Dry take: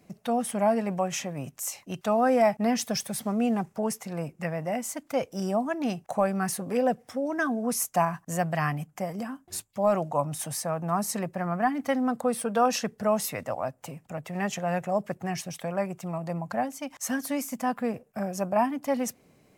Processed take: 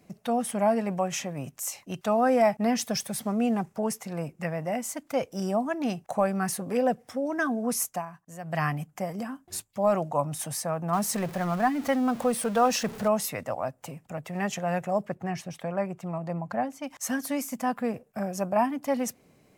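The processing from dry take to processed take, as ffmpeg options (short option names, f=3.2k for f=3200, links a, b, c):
-filter_complex "[0:a]asettb=1/sr,asplit=3[a][b][c];[a]atrim=end=10.934[d];[b]atrim=start=10.93:end=13.08,asetpts=PTS-STARTPTS,afade=t=in:d=0.004:c=qsin,afade=t=out:st=2.146:d=0.004:c=qsin,aeval=exprs='val(0)+0.5*0.0158*sgn(val(0))':c=same[e];[c]atrim=start=13.076[f];[d][e]acrossfade=d=0.004:c1=hsin:c2=qsin[g];[g][f]acrossfade=d=0.004:c1=qsin:c2=hsin,asettb=1/sr,asplit=3[h][i][j];[h]atrim=end=15.054[k];[i]atrim=start=15.05:end=16.84,asetpts=PTS-STARTPTS,afade=t=in:d=0.004:c=qsin,afade=t=out:st=1.786:d=0.004:c=qsin,highshelf=f=4.1k:g=-10[l];[j]atrim=start=16.836[m];[k][l]acrossfade=d=0.004:c1=hsin:c2=qsin[n];[n][m]acrossfade=d=0.004:c1=qsin:c2=hsin,asplit=3[o][p][q];[o]atrim=end=8.02,asetpts=PTS-STARTPTS,afade=t=out:st=7.88:d=0.14:silence=0.223872[r];[p]atrim=start=8.02:end=8.43,asetpts=PTS-STARTPTS,volume=-13dB[s];[q]atrim=start=8.43,asetpts=PTS-STARTPTS,afade=t=in:d=0.14:silence=0.223872[t];[r][s][t]concat=n=3:v=0:a=1"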